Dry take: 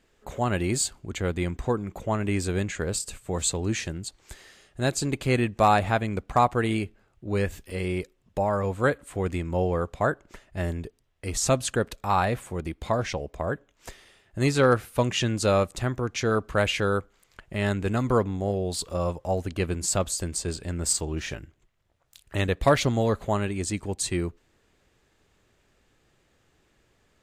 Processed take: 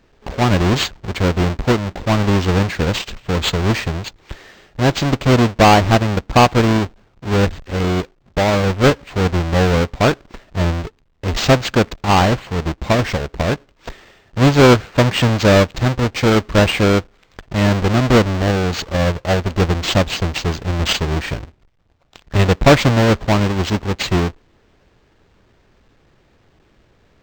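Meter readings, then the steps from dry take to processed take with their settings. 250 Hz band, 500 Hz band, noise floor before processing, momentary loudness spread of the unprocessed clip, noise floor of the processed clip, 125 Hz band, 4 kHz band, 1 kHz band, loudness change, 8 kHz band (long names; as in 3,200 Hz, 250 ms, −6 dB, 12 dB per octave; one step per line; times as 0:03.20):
+12.0 dB, +9.0 dB, −67 dBFS, 11 LU, −56 dBFS, +12.0 dB, +12.5 dB, +9.0 dB, +10.5 dB, +0.5 dB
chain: each half-wave held at its own peak
linearly interpolated sample-rate reduction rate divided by 4×
level +6 dB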